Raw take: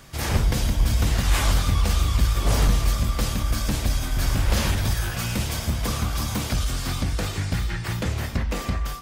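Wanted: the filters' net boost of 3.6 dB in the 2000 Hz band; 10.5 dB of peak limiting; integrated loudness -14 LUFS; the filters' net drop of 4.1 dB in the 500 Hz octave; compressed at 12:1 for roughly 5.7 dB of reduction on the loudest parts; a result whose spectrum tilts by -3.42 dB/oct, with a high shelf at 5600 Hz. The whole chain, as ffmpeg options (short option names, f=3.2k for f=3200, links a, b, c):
-af "equalizer=f=500:t=o:g=-5.5,equalizer=f=2k:t=o:g=4,highshelf=f=5.6k:g=6.5,acompressor=threshold=-20dB:ratio=12,volume=18dB,alimiter=limit=-5.5dB:level=0:latency=1"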